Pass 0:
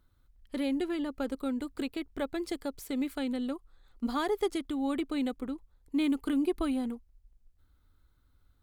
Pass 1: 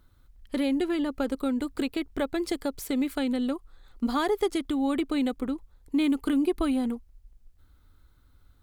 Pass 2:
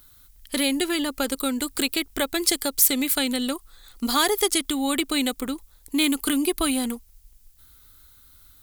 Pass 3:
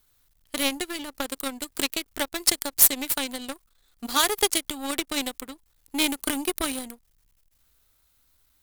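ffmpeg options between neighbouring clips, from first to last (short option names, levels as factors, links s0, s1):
-af "acompressor=threshold=0.0178:ratio=1.5,volume=2.37"
-af "crystalizer=i=9.5:c=0"
-af "aeval=exprs='val(0)+0.5*0.0398*sgn(val(0))':c=same,aeval=exprs='0.668*(cos(1*acos(clip(val(0)/0.668,-1,1)))-cos(1*PI/2))+0.0944*(cos(7*acos(clip(val(0)/0.668,-1,1)))-cos(7*PI/2))+0.00473*(cos(8*acos(clip(val(0)/0.668,-1,1)))-cos(8*PI/2))':c=same,volume=1.26"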